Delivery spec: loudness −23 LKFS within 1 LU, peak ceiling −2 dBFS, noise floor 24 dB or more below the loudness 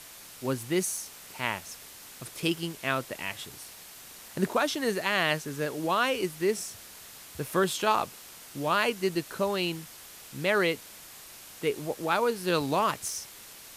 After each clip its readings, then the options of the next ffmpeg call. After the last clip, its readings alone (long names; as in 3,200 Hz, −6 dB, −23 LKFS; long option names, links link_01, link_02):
background noise floor −48 dBFS; target noise floor −54 dBFS; integrated loudness −29.5 LKFS; sample peak −11.0 dBFS; target loudness −23.0 LKFS
→ -af "afftdn=noise_reduction=6:noise_floor=-48"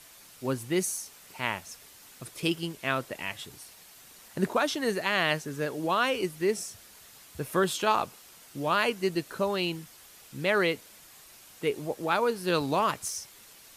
background noise floor −53 dBFS; target noise floor −54 dBFS
→ -af "afftdn=noise_reduction=6:noise_floor=-53"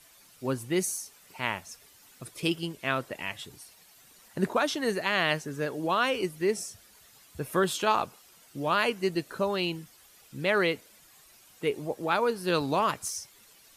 background noise floor −57 dBFS; integrated loudness −29.5 LKFS; sample peak −11.0 dBFS; target loudness −23.0 LKFS
→ -af "volume=6.5dB"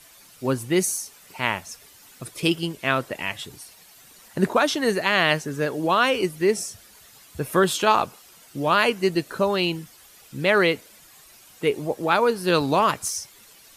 integrated loudness −23.0 LKFS; sample peak −4.5 dBFS; background noise floor −51 dBFS